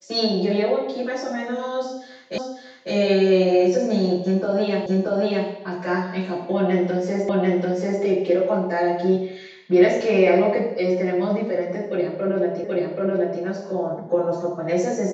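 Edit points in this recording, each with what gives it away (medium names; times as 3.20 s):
2.38 s: repeat of the last 0.55 s
4.86 s: repeat of the last 0.63 s
7.29 s: repeat of the last 0.74 s
12.64 s: repeat of the last 0.78 s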